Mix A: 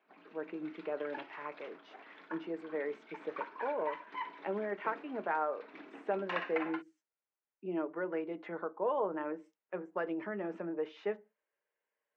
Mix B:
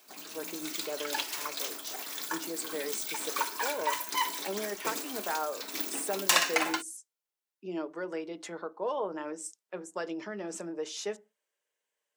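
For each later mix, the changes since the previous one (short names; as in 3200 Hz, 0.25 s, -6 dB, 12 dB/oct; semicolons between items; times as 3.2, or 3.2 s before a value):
background +9.0 dB; master: remove LPF 2300 Hz 24 dB/oct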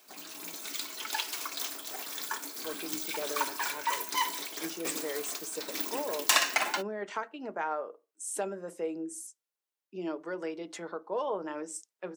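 speech: entry +2.30 s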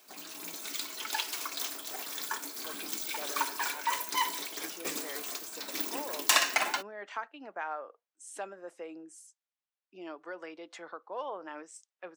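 speech: add band-pass 1600 Hz, Q 0.51; reverb: off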